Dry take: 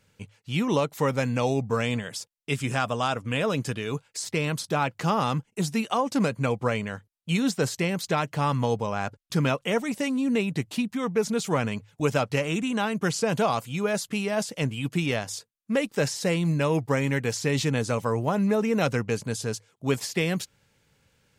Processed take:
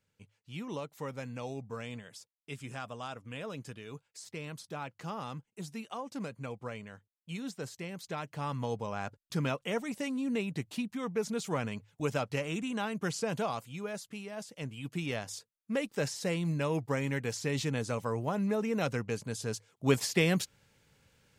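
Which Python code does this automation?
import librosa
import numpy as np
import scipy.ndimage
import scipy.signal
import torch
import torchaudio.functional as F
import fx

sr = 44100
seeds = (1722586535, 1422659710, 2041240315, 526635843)

y = fx.gain(x, sr, db=fx.line((7.83, -15.0), (8.94, -8.0), (13.23, -8.0), (14.32, -15.5), (15.25, -7.5), (19.33, -7.5), (19.89, -1.0)))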